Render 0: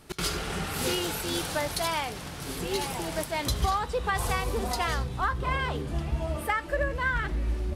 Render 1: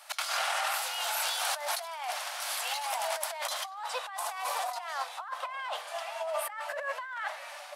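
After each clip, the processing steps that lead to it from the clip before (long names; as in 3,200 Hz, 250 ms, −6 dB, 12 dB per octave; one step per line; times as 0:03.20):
Butterworth high-pass 600 Hz 72 dB per octave
dynamic equaliser 810 Hz, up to +5 dB, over −40 dBFS, Q 0.79
compressor whose output falls as the input rises −35 dBFS, ratio −1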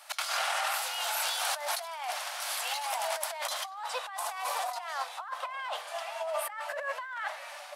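surface crackle 75 per second −58 dBFS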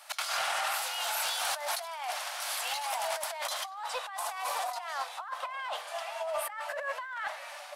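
soft clipping −20 dBFS, distortion −24 dB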